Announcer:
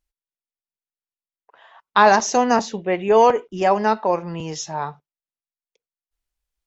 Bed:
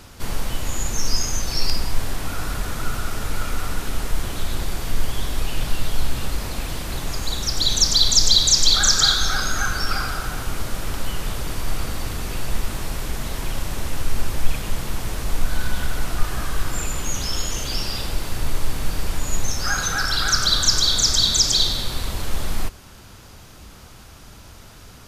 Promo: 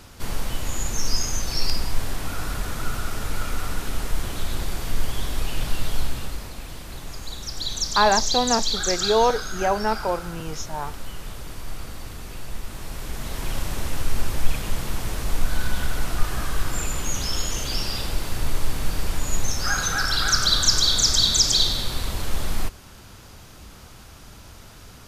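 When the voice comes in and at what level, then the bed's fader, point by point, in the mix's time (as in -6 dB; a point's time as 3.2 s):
6.00 s, -5.0 dB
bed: 5.97 s -2 dB
6.55 s -9 dB
12.62 s -9 dB
13.54 s -1 dB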